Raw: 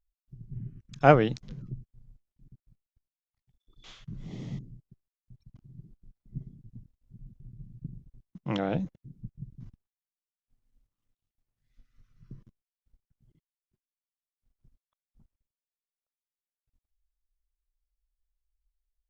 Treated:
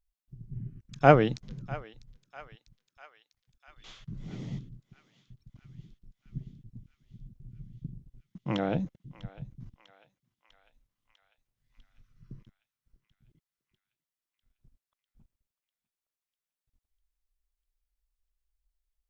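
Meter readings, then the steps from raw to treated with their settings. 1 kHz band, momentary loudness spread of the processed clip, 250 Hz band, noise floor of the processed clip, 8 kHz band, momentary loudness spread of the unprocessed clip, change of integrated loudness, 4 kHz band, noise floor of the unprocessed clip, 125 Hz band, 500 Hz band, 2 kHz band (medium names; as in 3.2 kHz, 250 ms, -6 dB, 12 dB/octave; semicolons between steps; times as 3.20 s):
0.0 dB, 26 LU, 0.0 dB, under -85 dBFS, no reading, 24 LU, -1.0 dB, 0.0 dB, under -85 dBFS, 0.0 dB, 0.0 dB, 0.0 dB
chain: on a send: thinning echo 648 ms, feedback 70%, high-pass 960 Hz, level -16.5 dB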